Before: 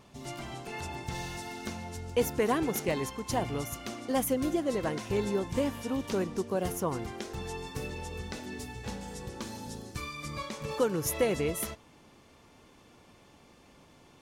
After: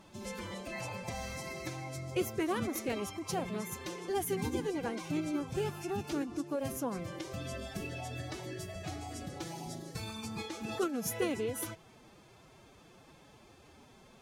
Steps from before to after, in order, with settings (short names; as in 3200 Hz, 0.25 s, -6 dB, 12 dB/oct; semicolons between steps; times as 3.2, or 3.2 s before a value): in parallel at +2 dB: compressor, threshold -38 dBFS, peak gain reduction 15.5 dB; on the sum: formant-preserving pitch shift +7 st; gain -7 dB